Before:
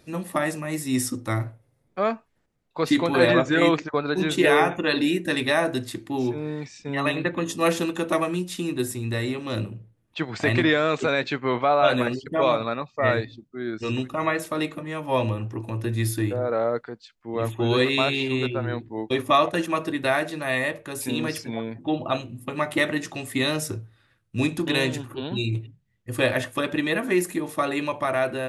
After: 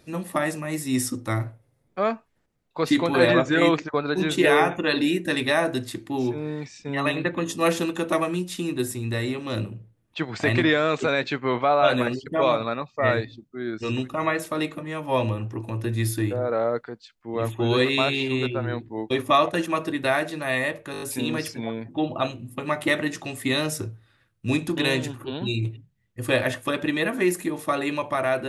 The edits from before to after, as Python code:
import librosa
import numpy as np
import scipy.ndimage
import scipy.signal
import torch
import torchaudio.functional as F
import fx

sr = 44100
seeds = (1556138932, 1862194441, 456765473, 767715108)

y = fx.edit(x, sr, fx.stutter(start_s=20.92, slice_s=0.02, count=6), tone=tone)